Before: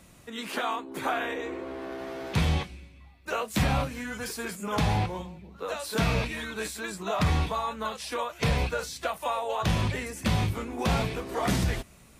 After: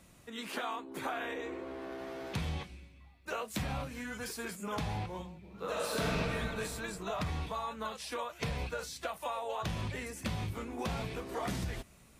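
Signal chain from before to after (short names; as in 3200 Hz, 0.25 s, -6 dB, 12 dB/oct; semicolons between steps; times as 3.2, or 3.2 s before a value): compressor, threshold -27 dBFS, peak gain reduction 7 dB; 5.38–6.16 reverb throw, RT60 2.7 s, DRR -4 dB; 10.06–10.63 crackle 21/s -44 dBFS; gain -5.5 dB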